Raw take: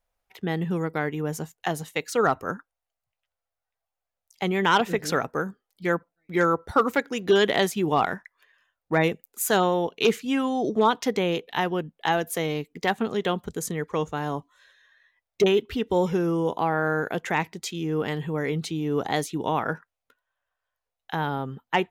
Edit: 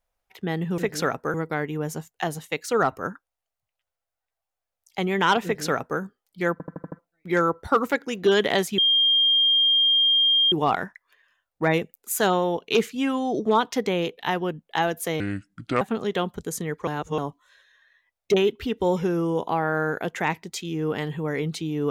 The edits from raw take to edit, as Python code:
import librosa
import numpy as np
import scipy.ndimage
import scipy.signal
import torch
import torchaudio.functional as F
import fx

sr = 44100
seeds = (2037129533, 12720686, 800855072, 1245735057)

y = fx.edit(x, sr, fx.duplicate(start_s=4.88, length_s=0.56, to_s=0.78),
    fx.stutter(start_s=5.96, slice_s=0.08, count=6),
    fx.insert_tone(at_s=7.82, length_s=1.74, hz=3210.0, db=-16.0),
    fx.speed_span(start_s=12.5, length_s=0.41, speed=0.67),
    fx.reverse_span(start_s=13.97, length_s=0.31), tone=tone)